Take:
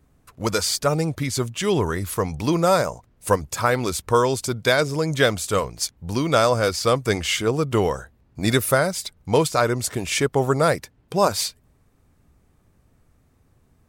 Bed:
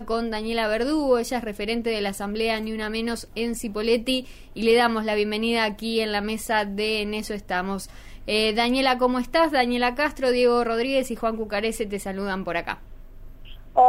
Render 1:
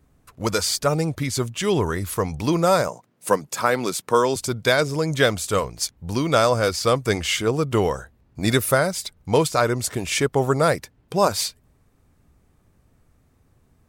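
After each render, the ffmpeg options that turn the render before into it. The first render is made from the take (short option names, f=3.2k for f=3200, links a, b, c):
-filter_complex "[0:a]asettb=1/sr,asplit=3[a][b][c];[a]atrim=end=2.884[d];[b]atrim=start=2.88:end=4.36,asetpts=PTS-STARTPTS,afade=t=in:d=0.004:c=qsin,afade=t=out:st=1.476:d=0.004:c=qsin,highpass=f=150:w=0.5412,highpass=f=150:w=1.3066[e];[c]atrim=start=4.356[f];[d][e]acrossfade=d=0.004:c1=hsin:c2=qsin[g];[g][f]acrossfade=d=0.004:c1=qsin:c2=hsin"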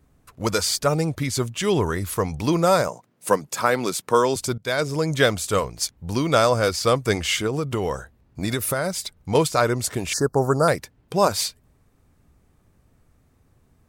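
-filter_complex "[0:a]asettb=1/sr,asplit=3[a][b][c];[a]atrim=end=7.464[d];[b]atrim=start=7.46:end=9.35,asetpts=PTS-STARTPTS,afade=t=in:d=0.004:c=qsin,afade=t=out:st=1.886:d=0.004:c=qsin,acompressor=threshold=-19dB:ratio=6:attack=3.2:release=140:knee=1:detection=peak[e];[c]atrim=start=9.346[f];[d][e]acrossfade=d=0.004:c1=hsin:c2=qsin[g];[g][f]acrossfade=d=0.004:c1=qsin:c2=hsin,asettb=1/sr,asplit=3[h][i][j];[h]atrim=end=10.134[k];[i]atrim=start=10.13:end=10.68,asetpts=PTS-STARTPTS,afade=t=in:d=0.004:c=qsin,afade=t=out:st=0.546:d=0.004:c=qsin,asuperstop=centerf=2700:order=12:qfactor=1[l];[j]atrim=start=10.676[m];[k][l]acrossfade=d=0.004:c1=hsin:c2=qsin[n];[n][m]acrossfade=d=0.004:c1=qsin:c2=hsin,asplit=2[o][p];[o]atrim=end=4.58,asetpts=PTS-STARTPTS,afade=t=out:st=4.576:d=0.004:c=hsin:silence=0.0891251[q];[p]atrim=start=4.58,asetpts=PTS-STARTPTS,afade=t=in:d=0.46:c=qsin:silence=0.0891251[r];[q][r]concat=n=2:v=0:a=1"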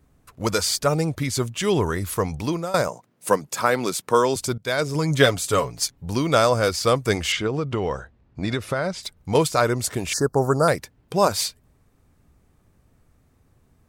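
-filter_complex "[0:a]asettb=1/sr,asplit=3[a][b][c];[a]atrim=end=4.944[d];[b]atrim=start=4.94:end=6.05,asetpts=PTS-STARTPTS,afade=t=in:d=0.004:c=qsin,afade=t=out:st=1.106:d=0.004:c=qsin,aecho=1:1:7.2:0.55,atrim=end_sample=48951[e];[c]atrim=start=6.046[f];[d][e]acrossfade=d=0.004:c1=hsin:c2=qsin[g];[g][f]acrossfade=d=0.004:c1=qsin:c2=hsin,asettb=1/sr,asplit=3[h][i][j];[h]atrim=end=7.324[k];[i]atrim=start=7.32:end=9.03,asetpts=PTS-STARTPTS,afade=t=in:d=0.004:c=qsin,afade=t=out:st=1.706:d=0.004:c=qsin,lowpass=4.4k[l];[j]atrim=start=9.026[m];[k][l]acrossfade=d=0.004:c1=hsin:c2=qsin[n];[n][m]acrossfade=d=0.004:c1=qsin:c2=hsin,asplit=2[o][p];[o]atrim=end=2.74,asetpts=PTS-STARTPTS,afade=t=out:st=2.34:d=0.4:silence=0.125893[q];[p]atrim=start=2.74,asetpts=PTS-STARTPTS,afade=t=in:d=0.004:c=hsin:silence=0.125893[r];[q][r]concat=n=2:v=0:a=1"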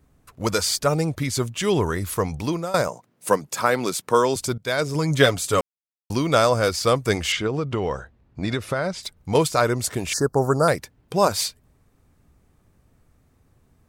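-filter_complex "[0:a]asplit=3[a][b][c];[a]atrim=end=5.61,asetpts=PTS-STARTPTS,afade=t=out:st=5.606:d=0.004:c=hsin[d];[b]atrim=start=5.61:end=6.1,asetpts=PTS-STARTPTS,volume=0[e];[c]atrim=start=6.1,asetpts=PTS-STARTPTS,afade=t=in:d=0.004:c=hsin[f];[d][e][f]concat=n=3:v=0:a=1"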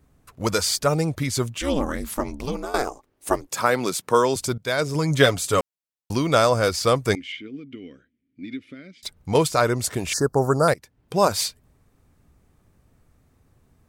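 -filter_complex "[0:a]asettb=1/sr,asplit=3[a][b][c];[a]atrim=end=1.584[d];[b]atrim=start=1.58:end=3.5,asetpts=PTS-STARTPTS,afade=t=in:d=0.004:c=qsin,afade=t=out:st=1.916:d=0.004:c=qsin,aeval=exprs='val(0)*sin(2*PI*140*n/s)':c=same[e];[c]atrim=start=3.496[f];[d][e]acrossfade=d=0.004:c1=hsin:c2=qsin[g];[g][f]acrossfade=d=0.004:c1=qsin:c2=hsin,asettb=1/sr,asplit=3[h][i][j];[h]atrim=end=7.154[k];[i]atrim=start=7.15:end=9.03,asetpts=PTS-STARTPTS,afade=t=in:d=0.004:c=qsin,afade=t=out:st=1.876:d=0.004:c=qsin,asplit=3[l][m][n];[l]bandpass=f=270:t=q:w=8,volume=0dB[o];[m]bandpass=f=2.29k:t=q:w=8,volume=-6dB[p];[n]bandpass=f=3.01k:t=q:w=8,volume=-9dB[q];[o][p][q]amix=inputs=3:normalize=0[r];[j]atrim=start=9.026[s];[k][r]acrossfade=d=0.004:c1=hsin:c2=qsin[t];[t][s]acrossfade=d=0.004:c1=qsin:c2=hsin,asplit=2[u][v];[u]atrim=end=10.74,asetpts=PTS-STARTPTS,afade=t=out:st=10.736:d=0.004:c=hsin:silence=0.112202[w];[v]atrim=start=10.74,asetpts=PTS-STARTPTS,afade=t=in:d=0.44:silence=0.112202[x];[w][x]concat=n=2:v=0:a=1"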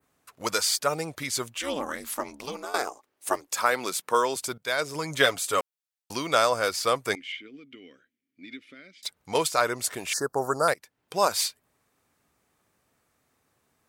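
-af "highpass=f=910:p=1,adynamicequalizer=threshold=0.00794:dfrequency=5600:dqfactor=0.83:tfrequency=5600:tqfactor=0.83:attack=5:release=100:ratio=0.375:range=2.5:mode=cutabove:tftype=bell"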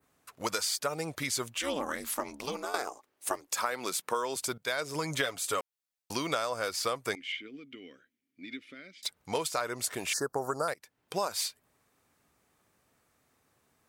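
-af "acompressor=threshold=-28dB:ratio=6"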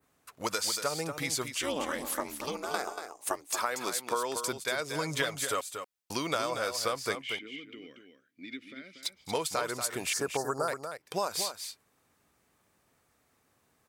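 -af "aecho=1:1:235:0.398"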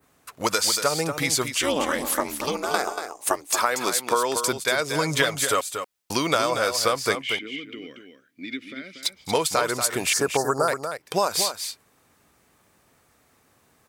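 -af "volume=9dB"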